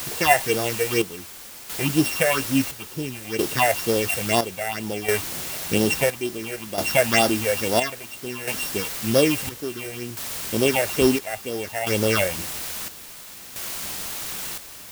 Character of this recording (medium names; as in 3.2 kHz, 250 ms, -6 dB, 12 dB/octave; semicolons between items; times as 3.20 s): a buzz of ramps at a fixed pitch in blocks of 16 samples; phasing stages 6, 2.1 Hz, lowest notch 270–2300 Hz; a quantiser's noise floor 6-bit, dither triangular; chopped level 0.59 Hz, depth 65%, duty 60%